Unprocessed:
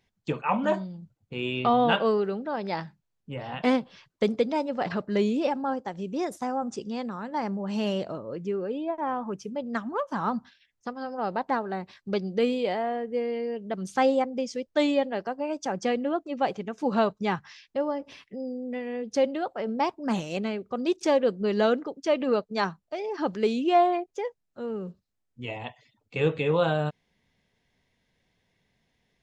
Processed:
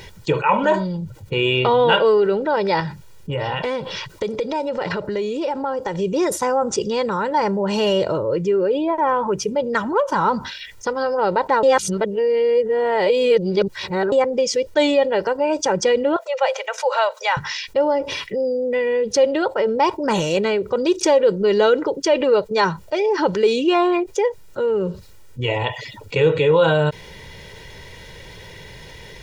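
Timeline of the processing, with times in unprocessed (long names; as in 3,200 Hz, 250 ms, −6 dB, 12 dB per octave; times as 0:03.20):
0:02.80–0:05.96: downward compressor, threshold −36 dBFS
0:11.63–0:14.12: reverse
0:16.16–0:17.37: Chebyshev high-pass with heavy ripple 500 Hz, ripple 3 dB
whole clip: comb filter 2.1 ms, depth 71%; envelope flattener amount 50%; level +3.5 dB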